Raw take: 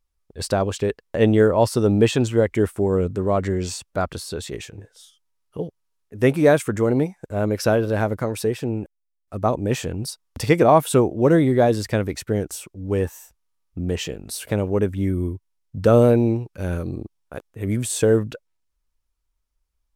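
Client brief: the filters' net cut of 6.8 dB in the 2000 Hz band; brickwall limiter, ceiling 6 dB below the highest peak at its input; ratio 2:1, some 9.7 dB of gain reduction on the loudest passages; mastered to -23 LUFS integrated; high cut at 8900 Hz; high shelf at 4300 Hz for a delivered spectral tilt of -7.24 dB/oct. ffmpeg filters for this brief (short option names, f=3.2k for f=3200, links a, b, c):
-af "lowpass=8.9k,equalizer=f=2k:t=o:g=-8.5,highshelf=f=4.3k:g=-4,acompressor=threshold=-29dB:ratio=2,volume=7.5dB,alimiter=limit=-11.5dB:level=0:latency=1"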